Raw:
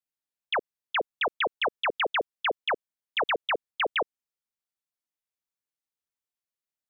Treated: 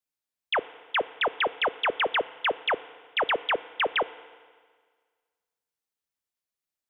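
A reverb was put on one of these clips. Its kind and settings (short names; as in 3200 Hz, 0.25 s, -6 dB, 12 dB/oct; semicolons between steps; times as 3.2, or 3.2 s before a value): FDN reverb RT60 1.7 s, low-frequency decay 0.95×, high-frequency decay 0.95×, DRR 16 dB; gain +1.5 dB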